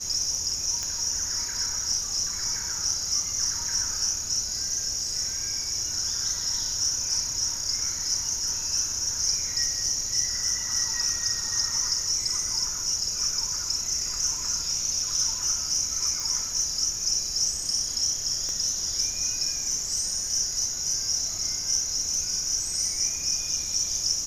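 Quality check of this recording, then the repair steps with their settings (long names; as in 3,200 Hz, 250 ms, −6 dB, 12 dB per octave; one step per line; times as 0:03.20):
0:00.83: click −17 dBFS
0:16.20: click
0:18.49: click −21 dBFS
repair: click removal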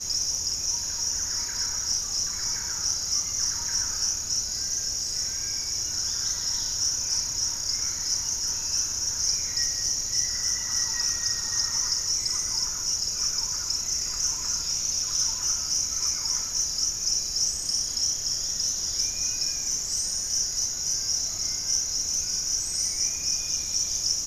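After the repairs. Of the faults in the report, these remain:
0:18.49: click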